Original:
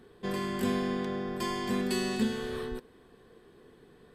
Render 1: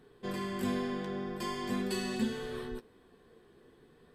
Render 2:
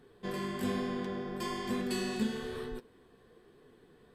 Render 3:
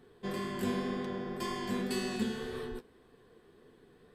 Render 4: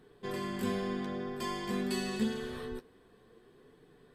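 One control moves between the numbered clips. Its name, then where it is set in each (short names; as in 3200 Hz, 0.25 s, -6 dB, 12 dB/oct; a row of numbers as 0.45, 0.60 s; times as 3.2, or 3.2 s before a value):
flange, rate: 0.41, 1.1, 1.9, 0.26 Hz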